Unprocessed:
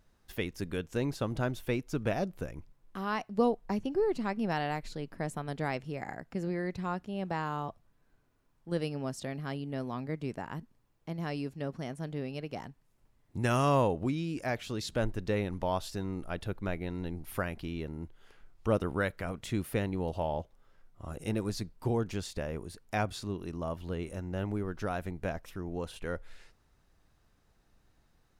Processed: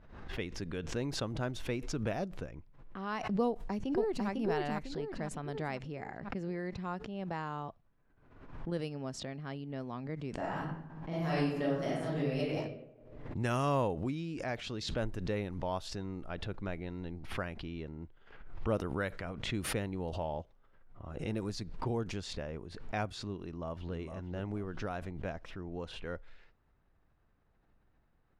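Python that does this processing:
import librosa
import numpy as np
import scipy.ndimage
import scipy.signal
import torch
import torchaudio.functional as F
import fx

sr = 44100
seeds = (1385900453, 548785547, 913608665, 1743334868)

y = fx.echo_throw(x, sr, start_s=3.47, length_s=0.81, ms=500, feedback_pct=45, wet_db=-2.0)
y = fx.reverb_throw(y, sr, start_s=10.33, length_s=2.22, rt60_s=0.83, drr_db=-8.5)
y = fx.echo_throw(y, sr, start_s=23.42, length_s=0.52, ms=460, feedback_pct=30, wet_db=-8.5)
y = fx.high_shelf(y, sr, hz=7700.0, db=-4.0)
y = fx.env_lowpass(y, sr, base_hz=2200.0, full_db=-26.0)
y = fx.pre_swell(y, sr, db_per_s=60.0)
y = F.gain(torch.from_numpy(y), -4.5).numpy()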